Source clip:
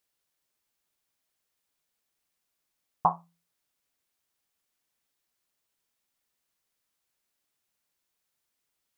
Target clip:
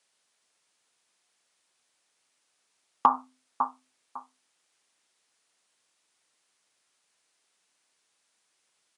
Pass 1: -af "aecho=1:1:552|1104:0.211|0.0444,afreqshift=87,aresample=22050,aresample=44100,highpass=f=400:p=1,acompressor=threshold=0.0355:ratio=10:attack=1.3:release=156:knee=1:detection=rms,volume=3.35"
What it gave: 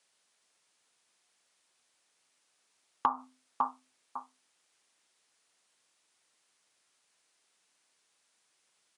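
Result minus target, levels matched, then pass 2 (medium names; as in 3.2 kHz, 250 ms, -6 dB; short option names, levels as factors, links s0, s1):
compression: peak gain reduction +8 dB
-af "aecho=1:1:552|1104:0.211|0.0444,afreqshift=87,aresample=22050,aresample=44100,highpass=f=400:p=1,acompressor=threshold=0.1:ratio=10:attack=1.3:release=156:knee=1:detection=rms,volume=3.35"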